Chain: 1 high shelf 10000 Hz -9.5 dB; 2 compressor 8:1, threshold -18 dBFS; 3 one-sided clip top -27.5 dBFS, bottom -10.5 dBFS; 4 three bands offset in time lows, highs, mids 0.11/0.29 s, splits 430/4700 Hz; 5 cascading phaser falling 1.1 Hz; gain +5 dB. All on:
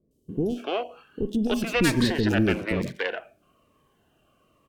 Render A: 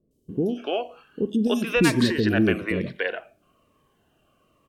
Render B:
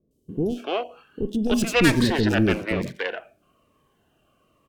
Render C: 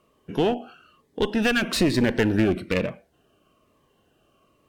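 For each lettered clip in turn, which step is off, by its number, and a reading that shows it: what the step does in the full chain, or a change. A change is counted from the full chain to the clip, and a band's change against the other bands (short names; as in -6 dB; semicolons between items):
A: 3, distortion -9 dB; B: 2, mean gain reduction 2.0 dB; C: 4, loudness change +2.0 LU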